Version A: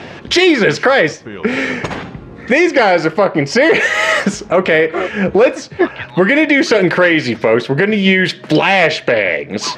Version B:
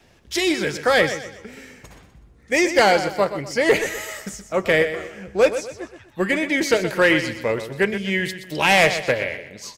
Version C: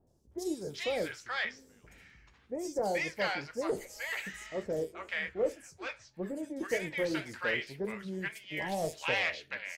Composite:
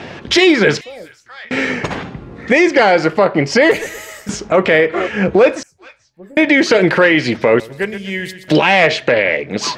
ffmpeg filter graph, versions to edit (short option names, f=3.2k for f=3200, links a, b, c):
-filter_complex "[2:a]asplit=2[a][b];[1:a]asplit=2[c][d];[0:a]asplit=5[e][f][g][h][i];[e]atrim=end=0.812[j];[a]atrim=start=0.808:end=1.512[k];[f]atrim=start=1.508:end=3.712[l];[c]atrim=start=3.708:end=4.292[m];[g]atrim=start=4.288:end=5.632[n];[b]atrim=start=5.628:end=6.372[o];[h]atrim=start=6.368:end=7.602[p];[d]atrim=start=7.598:end=8.482[q];[i]atrim=start=8.478[r];[j][k]acrossfade=d=0.004:c1=hsin:c2=hsin[s];[s][l]acrossfade=d=0.004:c1=hsin:c2=hsin[t];[t][m]acrossfade=d=0.004:c1=hsin:c2=hsin[u];[u][n]acrossfade=d=0.004:c1=hsin:c2=hsin[v];[v][o]acrossfade=d=0.004:c1=hsin:c2=hsin[w];[w][p]acrossfade=d=0.004:c1=hsin:c2=hsin[x];[x][q]acrossfade=d=0.004:c1=hsin:c2=hsin[y];[y][r]acrossfade=d=0.004:c1=hsin:c2=hsin"